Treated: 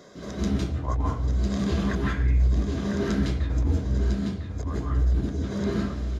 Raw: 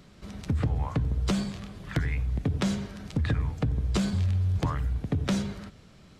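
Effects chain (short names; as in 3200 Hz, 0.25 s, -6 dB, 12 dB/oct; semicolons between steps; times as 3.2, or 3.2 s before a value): low shelf 79 Hz -6.5 dB; negative-ratio compressor -38 dBFS, ratio -1; echo 1.002 s -7 dB; reverb RT60 0.55 s, pre-delay 0.153 s, DRR -4 dB; gain -4.5 dB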